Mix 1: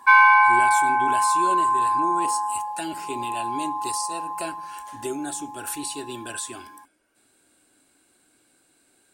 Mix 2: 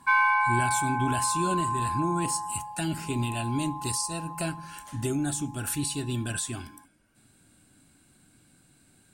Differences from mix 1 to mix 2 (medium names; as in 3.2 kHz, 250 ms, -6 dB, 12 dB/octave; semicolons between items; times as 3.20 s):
background -8.0 dB; master: add resonant low shelf 250 Hz +14 dB, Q 1.5